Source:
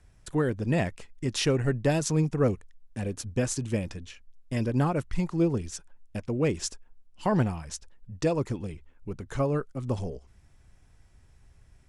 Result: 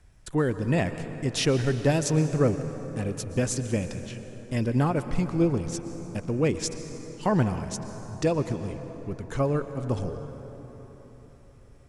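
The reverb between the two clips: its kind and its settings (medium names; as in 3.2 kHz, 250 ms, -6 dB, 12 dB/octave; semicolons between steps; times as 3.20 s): plate-style reverb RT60 4.6 s, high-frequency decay 0.5×, pre-delay 105 ms, DRR 9.5 dB; trim +1.5 dB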